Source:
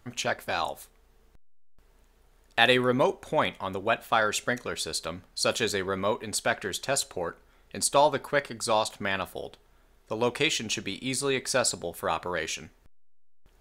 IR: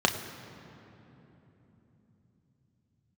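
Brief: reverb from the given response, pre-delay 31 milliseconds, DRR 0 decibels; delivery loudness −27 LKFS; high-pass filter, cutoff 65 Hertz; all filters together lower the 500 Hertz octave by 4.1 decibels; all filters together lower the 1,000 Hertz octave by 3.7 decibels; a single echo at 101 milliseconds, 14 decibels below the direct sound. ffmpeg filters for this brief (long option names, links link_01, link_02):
-filter_complex "[0:a]highpass=65,equalizer=frequency=500:width_type=o:gain=-4,equalizer=frequency=1000:width_type=o:gain=-3.5,aecho=1:1:101:0.2,asplit=2[link_01][link_02];[1:a]atrim=start_sample=2205,adelay=31[link_03];[link_02][link_03]afir=irnorm=-1:irlink=0,volume=-13.5dB[link_04];[link_01][link_04]amix=inputs=2:normalize=0,volume=-0.5dB"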